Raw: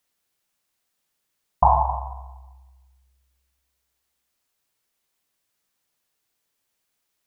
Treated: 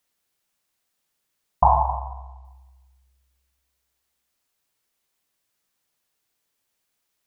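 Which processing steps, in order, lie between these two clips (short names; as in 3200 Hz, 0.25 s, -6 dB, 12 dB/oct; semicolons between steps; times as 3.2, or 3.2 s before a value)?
1.93–2.45 air absorption 72 m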